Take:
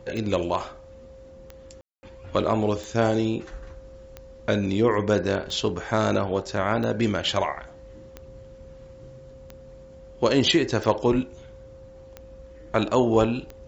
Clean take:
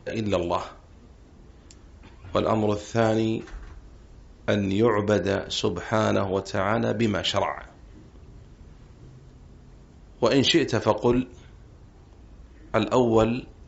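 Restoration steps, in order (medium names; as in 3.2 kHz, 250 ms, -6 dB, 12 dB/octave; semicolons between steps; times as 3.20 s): de-click; band-stop 530 Hz, Q 30; room tone fill 1.81–2.03 s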